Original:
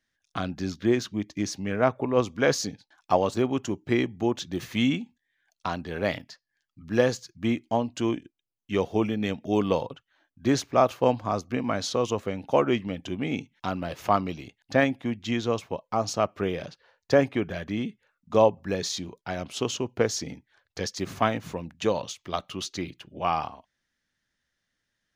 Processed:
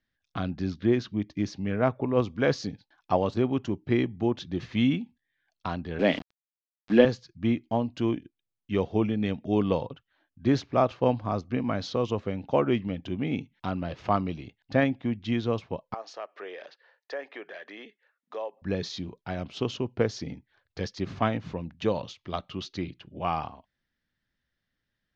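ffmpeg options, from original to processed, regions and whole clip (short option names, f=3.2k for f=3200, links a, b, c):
-filter_complex "[0:a]asettb=1/sr,asplit=3[a][b][c];[a]atrim=end=5.994[d];[b]atrim=start=5.99:end=7.05,asetpts=PTS-STARTPTS,afade=t=in:d=0.004:c=qsin,afade=t=out:st=1.056:d=0.004:c=qsin,highpass=f=180:w=0.5412,highpass=f=180:w=1.3066,equalizer=f=270:t=q:w=4:g=5,equalizer=f=1.2k:t=q:w=4:g=-7,equalizer=f=3.1k:t=q:w=4:g=6,lowpass=f=3.8k:w=0.5412,lowpass=f=3.8k:w=1.3066,acontrast=39,aeval=exprs='val(0)*gte(abs(val(0)),0.0224)':c=same[e];[c]atrim=start=7.046[f];[d][e]acrossfade=d=0.004:c1=hsin:c2=qsin[g];[g][f]acrossfade=d=0.004:c1=qsin:c2=hsin,asettb=1/sr,asplit=3[h][i][j];[h]atrim=end=15.944[k];[i]atrim=start=15.94:end=18.62,asetpts=PTS-STARTPTS,afade=t=in:d=0.004:c=qsin,afade=t=out:st=2.676:d=0.004:c=qsin,highpass=f=430:w=0.5412,highpass=f=430:w=1.3066,equalizer=f=1.8k:t=o:w=0.31:g=8,acompressor=threshold=-38dB:ratio=2:attack=3.2:release=140:knee=1:detection=peak[l];[j]atrim=start=18.616[m];[k][l]acrossfade=d=0.004:c1=hsin:c2=qsin[n];[n][m]acrossfade=d=0.004:c1=qsin:c2=hsin,lowpass=f=4.9k:w=0.5412,lowpass=f=4.9k:w=1.3066,lowshelf=f=290:g=7.5,volume=-4dB"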